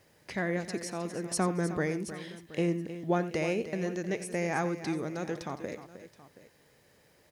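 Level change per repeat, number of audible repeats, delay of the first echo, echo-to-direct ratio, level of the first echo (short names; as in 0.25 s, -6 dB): no steady repeat, 3, 87 ms, -10.0 dB, -15.0 dB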